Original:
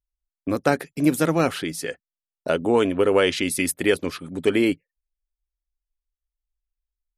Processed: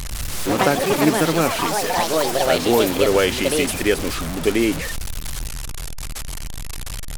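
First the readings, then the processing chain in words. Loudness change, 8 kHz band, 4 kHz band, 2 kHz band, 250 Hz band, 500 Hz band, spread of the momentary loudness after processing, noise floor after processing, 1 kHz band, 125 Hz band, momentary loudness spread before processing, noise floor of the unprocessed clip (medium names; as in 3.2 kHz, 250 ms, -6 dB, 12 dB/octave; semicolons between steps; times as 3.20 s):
+3.0 dB, +7.5 dB, +7.5 dB, +4.0 dB, +2.0 dB, +3.5 dB, 15 LU, -28 dBFS, +7.5 dB, +4.0 dB, 12 LU, under -85 dBFS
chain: one-bit delta coder 64 kbps, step -22.5 dBFS; ever faster or slower copies 110 ms, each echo +5 st, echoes 3; trim +1 dB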